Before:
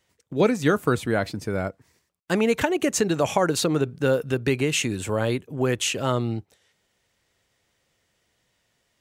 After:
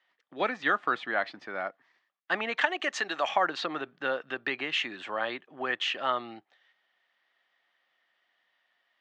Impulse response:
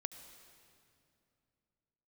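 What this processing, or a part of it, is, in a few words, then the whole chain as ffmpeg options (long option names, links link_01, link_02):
phone earpiece: -filter_complex "[0:a]asettb=1/sr,asplit=3[link_01][link_02][link_03];[link_01]atrim=end=2.574[link_04];[link_02]atrim=start=2.57:end=3.29,asetpts=PTS-STARTPTS,afade=type=in:duration=0.004:curve=qsin,afade=type=out:start_time=0.716:duration=0.004:curve=qsin,aemphasis=mode=production:type=bsi[link_05];[link_03]atrim=start=3.286[link_06];[link_04][link_05]acrossfade=duration=0.004:curve1=hsin:curve2=qsin[link_07];[link_07][link_06]acrossfade=duration=0.004:curve1=qsin:curve2=hsin,highpass=130,highpass=430,equalizer=frequency=450:width_type=q:width=4:gain=-9,equalizer=frequency=750:width_type=q:width=4:gain=6,equalizer=frequency=1200:width_type=q:width=4:gain=7,equalizer=frequency=1800:width_type=q:width=4:gain=10,equalizer=frequency=3200:width_type=q:width=4:gain=5,lowpass=frequency=4200:width=0.5412,lowpass=frequency=4200:width=1.3066,volume=-6dB"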